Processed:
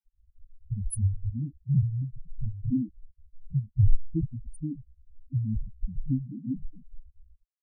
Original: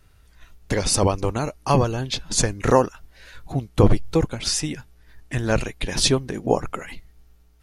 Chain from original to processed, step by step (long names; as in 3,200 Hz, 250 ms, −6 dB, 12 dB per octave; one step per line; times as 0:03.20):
elliptic band-stop filter 300–9,700 Hz
bit-depth reduction 8 bits, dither none
spectral peaks only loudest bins 2
level +1 dB